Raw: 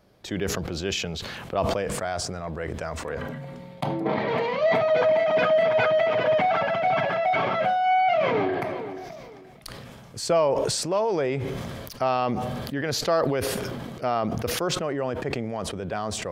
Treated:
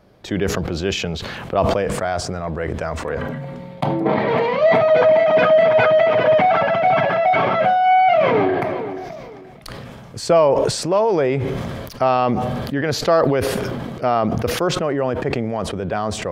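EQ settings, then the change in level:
high-shelf EQ 3,500 Hz −7.5 dB
+7.5 dB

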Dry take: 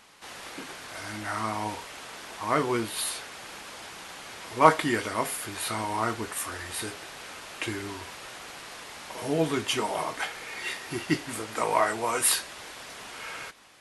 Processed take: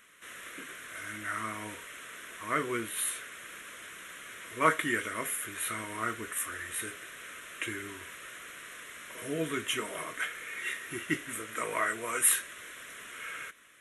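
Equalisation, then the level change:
low-shelf EQ 360 Hz −12 dB
parametric band 2,600 Hz −4.5 dB 0.48 octaves
phaser with its sweep stopped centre 2,000 Hz, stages 4
+2.0 dB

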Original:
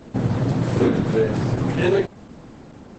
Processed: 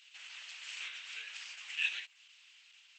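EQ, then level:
dynamic equaliser 3,700 Hz, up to −5 dB, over −48 dBFS, Q 1.3
four-pole ladder high-pass 2,500 Hz, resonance 65%
+4.5 dB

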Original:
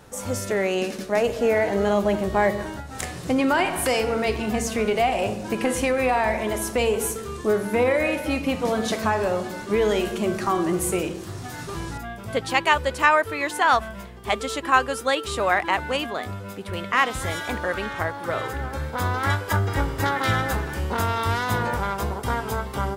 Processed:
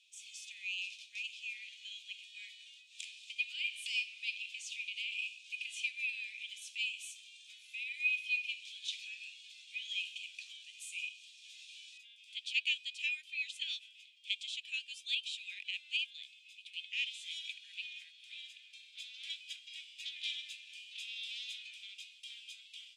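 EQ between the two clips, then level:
Chebyshev high-pass with heavy ripple 2,400 Hz, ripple 6 dB
low-pass filter 4,800 Hz 12 dB per octave
spectral tilt −4 dB per octave
+5.5 dB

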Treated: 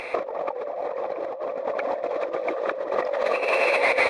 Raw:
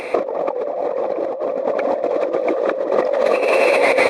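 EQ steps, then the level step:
low-pass filter 2,900 Hz 6 dB per octave
parametric band 260 Hz −13 dB 2.7 octaves
0.0 dB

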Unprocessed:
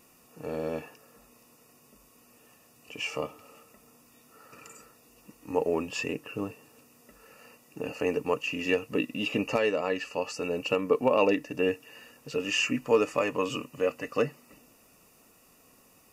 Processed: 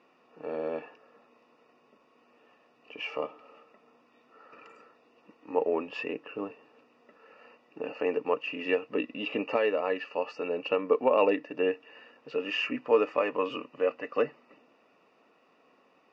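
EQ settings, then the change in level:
band-pass filter 340–7,000 Hz
high-frequency loss of the air 330 metres
+2.0 dB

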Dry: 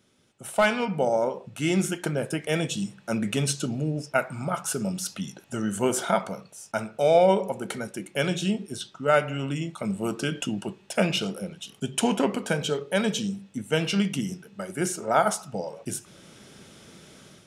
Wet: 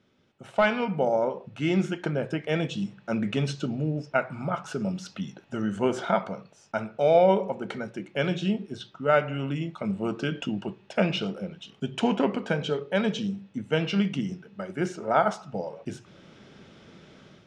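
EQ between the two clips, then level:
high-frequency loss of the air 180 metres
mains-hum notches 60/120 Hz
0.0 dB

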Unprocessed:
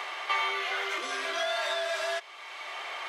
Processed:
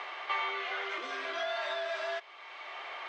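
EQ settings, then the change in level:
high-frequency loss of the air 160 metres
−3.0 dB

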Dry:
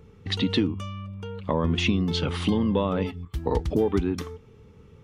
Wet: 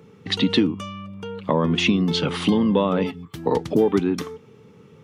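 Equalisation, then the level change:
high-pass filter 130 Hz 24 dB per octave
+5.0 dB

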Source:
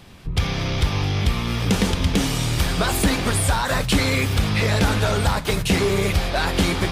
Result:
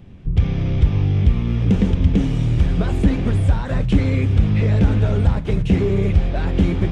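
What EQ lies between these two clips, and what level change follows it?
head-to-tape spacing loss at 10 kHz 31 dB
parametric band 1,100 Hz −13.5 dB 2.4 octaves
parametric band 4,500 Hz −9 dB 0.67 octaves
+6.5 dB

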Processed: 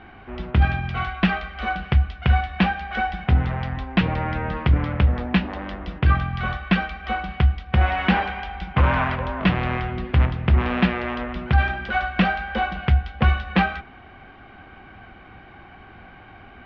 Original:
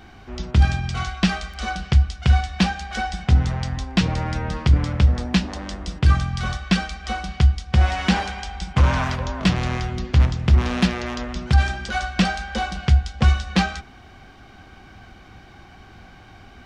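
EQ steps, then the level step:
low-pass filter 2,800 Hz 24 dB per octave
low-shelf EQ 230 Hz −6 dB
+3.0 dB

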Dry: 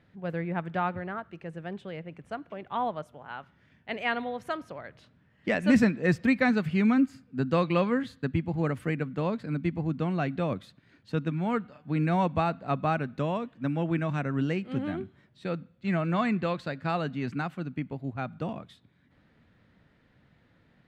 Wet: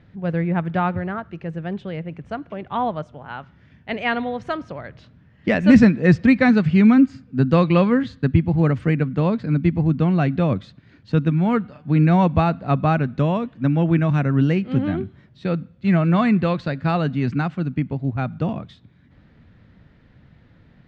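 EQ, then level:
low-pass filter 6,400 Hz 24 dB per octave
low-shelf EQ 190 Hz +10.5 dB
+6.0 dB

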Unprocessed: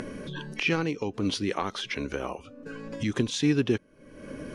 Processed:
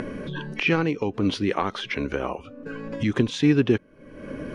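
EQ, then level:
bass and treble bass 0 dB, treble −11 dB
+5.0 dB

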